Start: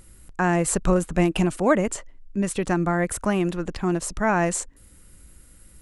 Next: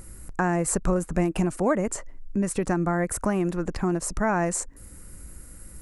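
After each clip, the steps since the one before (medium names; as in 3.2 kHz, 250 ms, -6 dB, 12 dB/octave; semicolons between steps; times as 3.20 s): peaking EQ 3.3 kHz -11 dB 0.82 oct; compression 2:1, threshold -34 dBFS, peak gain reduction 11.5 dB; trim +6.5 dB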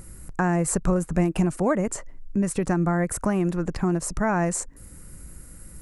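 peaking EQ 150 Hz +5 dB 0.65 oct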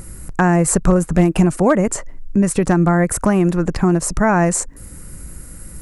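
hard clipper -12.5 dBFS, distortion -31 dB; trim +8.5 dB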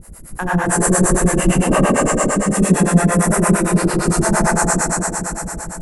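spectral sustain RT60 1.74 s; Schroeder reverb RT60 3.9 s, combs from 27 ms, DRR -8.5 dB; harmonic tremolo 8.8 Hz, depth 100%, crossover 480 Hz; trim -6.5 dB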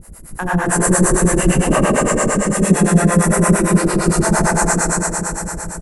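delay 214 ms -7 dB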